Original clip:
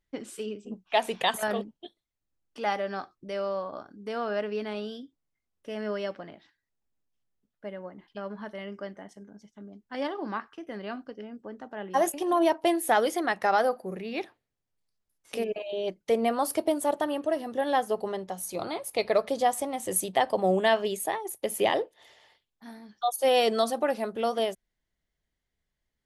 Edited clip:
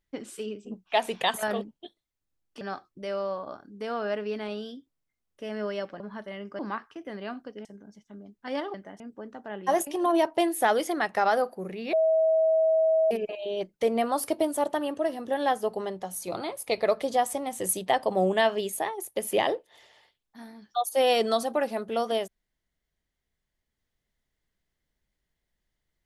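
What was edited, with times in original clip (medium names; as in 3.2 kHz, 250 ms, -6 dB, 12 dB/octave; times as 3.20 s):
2.61–2.87 s: delete
6.26–8.27 s: delete
8.86–9.12 s: swap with 10.21–11.27 s
14.20–15.38 s: bleep 642 Hz -19 dBFS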